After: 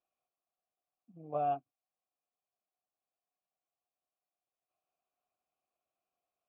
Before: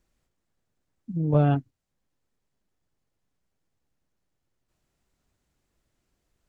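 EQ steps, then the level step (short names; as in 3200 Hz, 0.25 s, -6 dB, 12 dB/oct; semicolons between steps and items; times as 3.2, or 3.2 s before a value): vowel filter a; 0.0 dB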